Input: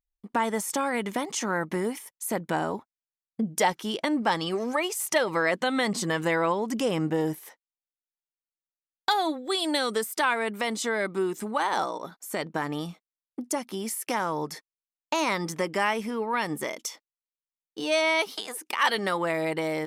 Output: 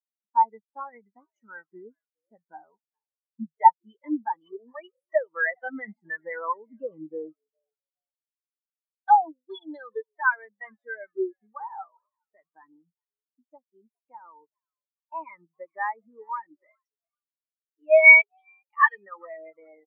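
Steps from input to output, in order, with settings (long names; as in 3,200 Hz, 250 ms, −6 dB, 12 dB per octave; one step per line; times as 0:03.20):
parametric band 1,700 Hz +8 dB 2.3 octaves
on a send: echo with shifted repeats 412 ms, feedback 55%, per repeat +120 Hz, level −12 dB
on the sum: every bin expanded away from the loudest bin 4 to 1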